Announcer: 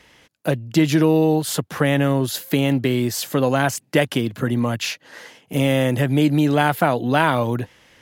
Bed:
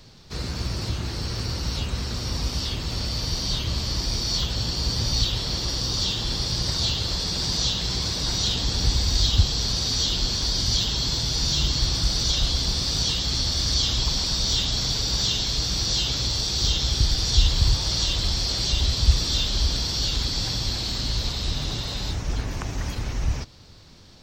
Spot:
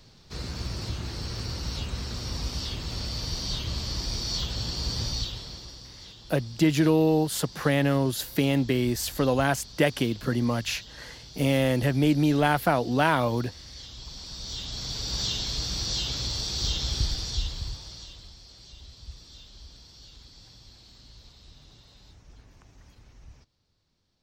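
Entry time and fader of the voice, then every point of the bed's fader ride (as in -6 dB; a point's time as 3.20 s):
5.85 s, -5.0 dB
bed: 5.03 s -5 dB
5.96 s -21.5 dB
13.76 s -21.5 dB
15.20 s -5.5 dB
17.02 s -5.5 dB
18.38 s -25 dB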